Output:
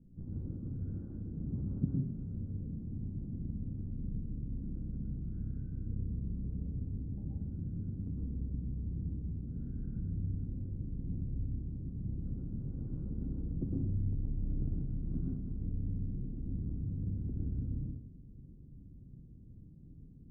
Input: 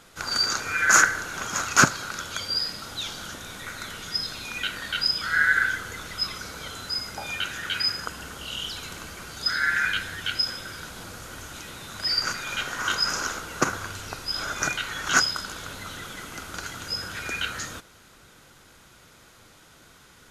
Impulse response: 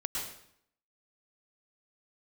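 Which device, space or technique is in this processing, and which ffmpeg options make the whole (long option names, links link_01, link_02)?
club heard from the street: -filter_complex "[0:a]alimiter=limit=-13.5dB:level=0:latency=1:release=231,lowpass=frequency=240:width=0.5412,lowpass=frequency=240:width=1.3066[link_01];[1:a]atrim=start_sample=2205[link_02];[link_01][link_02]afir=irnorm=-1:irlink=0,volume=3.5dB"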